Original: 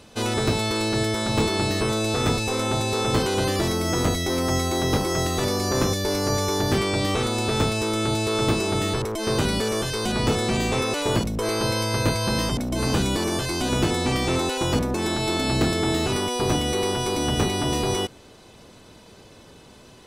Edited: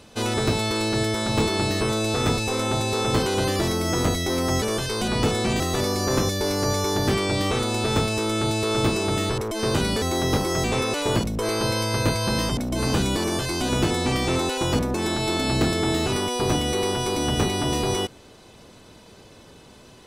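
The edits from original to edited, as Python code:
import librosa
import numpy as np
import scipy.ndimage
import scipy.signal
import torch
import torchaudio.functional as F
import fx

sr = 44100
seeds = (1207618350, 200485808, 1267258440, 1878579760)

y = fx.edit(x, sr, fx.swap(start_s=4.62, length_s=0.62, other_s=9.66, other_length_s=0.98), tone=tone)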